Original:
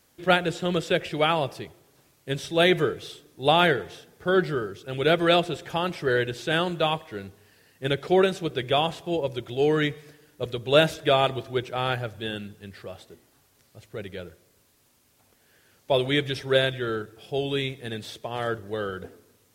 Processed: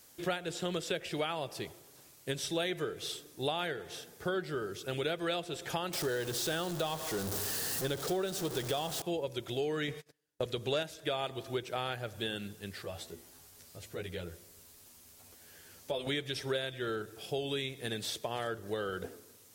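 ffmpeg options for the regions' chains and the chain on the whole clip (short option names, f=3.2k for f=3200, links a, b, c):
-filter_complex "[0:a]asettb=1/sr,asplit=3[a][b][c];[a]atrim=end=5.934[d];[b]atrim=start=5.93:end=9.02,asetpts=PTS-STARTPTS,afade=t=in:d=0.004:c=qsin,afade=t=out:st=3.086:d=0.004:c=qsin,aeval=exprs='val(0)+0.5*0.0376*sgn(val(0))':c=same,equalizer=f=2.3k:w=1.9:g=-7,bandreject=f=1k:w=21[e];[c]atrim=start=9.016[f];[d][e]acrossfade=d=0.004:c1=hsin:c2=qsin[g];[g][f]acrossfade=d=0.004:c1=qsin:c2=hsin,asettb=1/sr,asplit=3[h][i][j];[h]atrim=end=9.884[k];[i]atrim=start=9.88:end=10.83,asetpts=PTS-STARTPTS,afade=t=in:d=0.004:c=qsin,afade=t=out:st=0.946:d=0.004:c=qsin,highshelf=f=12k:g=-7.5,agate=range=-35dB:threshold=-46dB:ratio=16:release=100:detection=peak,acontrast=48[l];[j]atrim=start=10.826[m];[k][l]acrossfade=d=0.004:c1=hsin:c2=qsin[n];[n][m]acrossfade=d=0.004:c1=qsin:c2=hsin,asettb=1/sr,asplit=3[o][p][q];[o]atrim=end=12.834[r];[p]atrim=start=12.83:end=16.07,asetpts=PTS-STARTPTS,afade=t=in:d=0.004:c=qsin,afade=t=out:st=3.236:d=0.004:c=qsin,lowshelf=f=72:g=10,acompressor=threshold=-46dB:ratio=1.5:attack=3.2:release=140:knee=1:detection=peak,asplit=2[s][t];[t]adelay=12,volume=-2.5dB[u];[s][u]amix=inputs=2:normalize=0,atrim=end_sample=142884[v];[q]atrim=start=16.066[w];[r][v]acrossfade=d=0.004:c1=hsin:c2=qsin[x];[x][w]acrossfade=d=0.004:c1=qsin:c2=hsin,bass=f=250:g=-3,treble=f=4k:g=7,acompressor=threshold=-32dB:ratio=6"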